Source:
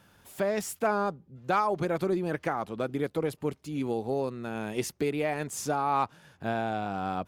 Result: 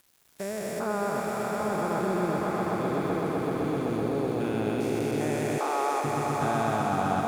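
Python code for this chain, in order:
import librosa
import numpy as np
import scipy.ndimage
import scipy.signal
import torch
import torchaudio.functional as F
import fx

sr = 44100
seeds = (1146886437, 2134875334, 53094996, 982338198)

p1 = fx.spec_steps(x, sr, hold_ms=400)
p2 = p1 + fx.echo_swell(p1, sr, ms=127, loudest=5, wet_db=-7.0, dry=0)
p3 = np.where(np.abs(p2) >= 10.0 ** (-48.5 / 20.0), p2, 0.0)
p4 = fx.highpass(p3, sr, hz=370.0, slope=24, at=(5.58, 6.04))
y = F.gain(torch.from_numpy(p4), 2.0).numpy()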